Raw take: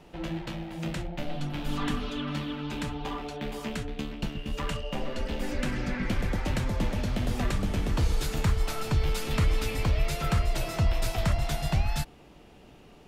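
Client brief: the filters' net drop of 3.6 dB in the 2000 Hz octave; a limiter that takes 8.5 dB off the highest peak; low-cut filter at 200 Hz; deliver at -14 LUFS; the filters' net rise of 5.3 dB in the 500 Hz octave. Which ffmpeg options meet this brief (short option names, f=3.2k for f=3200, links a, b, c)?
-af "highpass=200,equalizer=f=500:t=o:g=7,equalizer=f=2k:t=o:g=-5,volume=20dB,alimiter=limit=-3dB:level=0:latency=1"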